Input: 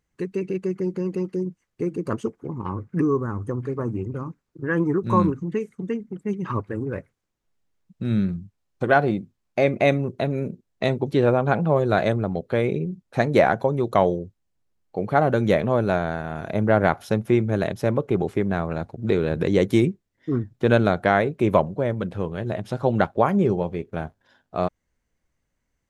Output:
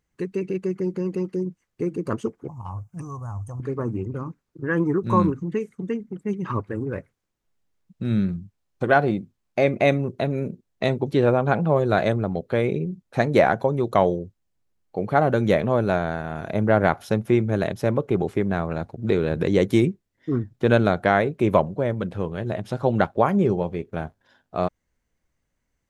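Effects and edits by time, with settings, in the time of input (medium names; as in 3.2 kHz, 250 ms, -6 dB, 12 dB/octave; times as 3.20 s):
2.48–3.60 s: FFT filter 110 Hz 0 dB, 220 Hz -16 dB, 410 Hz -24 dB, 700 Hz +2 dB, 1.9 kHz -18 dB, 2.9 kHz -5 dB, 4.1 kHz -8 dB, 6.2 kHz +6 dB, 9.3 kHz +8 dB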